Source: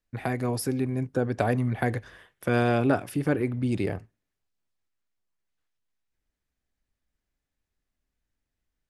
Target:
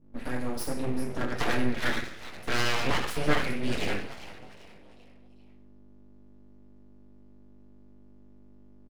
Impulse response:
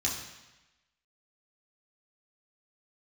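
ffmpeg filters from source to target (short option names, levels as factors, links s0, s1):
-filter_complex "[0:a]agate=range=0.355:threshold=0.0112:ratio=16:detection=peak,aecho=1:1:6.8:0.66,acrossover=split=230|1500|6000[s0][s1][s2][s3];[s2]dynaudnorm=f=740:g=3:m=5.96[s4];[s0][s1][s4][s3]amix=inputs=4:normalize=0,asplit=5[s5][s6][s7][s8][s9];[s6]adelay=396,afreqshift=92,volume=0.2[s10];[s7]adelay=792,afreqshift=184,volume=0.0759[s11];[s8]adelay=1188,afreqshift=276,volume=0.0288[s12];[s9]adelay=1584,afreqshift=368,volume=0.011[s13];[s5][s10][s11][s12][s13]amix=inputs=5:normalize=0,aeval=exprs='val(0)+0.00355*(sin(2*PI*50*n/s)+sin(2*PI*2*50*n/s)/2+sin(2*PI*3*50*n/s)/3+sin(2*PI*4*50*n/s)/4+sin(2*PI*5*50*n/s)/5)':c=same[s14];[1:a]atrim=start_sample=2205,afade=t=out:st=0.37:d=0.01,atrim=end_sample=16758,asetrate=66150,aresample=44100[s15];[s14][s15]afir=irnorm=-1:irlink=0,aeval=exprs='abs(val(0))':c=same,volume=0.376"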